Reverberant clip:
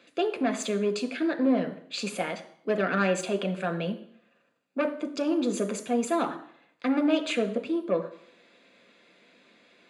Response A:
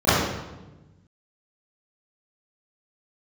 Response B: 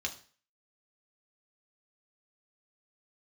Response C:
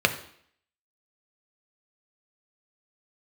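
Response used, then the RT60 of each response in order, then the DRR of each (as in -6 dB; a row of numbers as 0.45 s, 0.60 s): C; 1.1 s, 0.40 s, 0.60 s; -16.5 dB, 1.0 dB, 6.0 dB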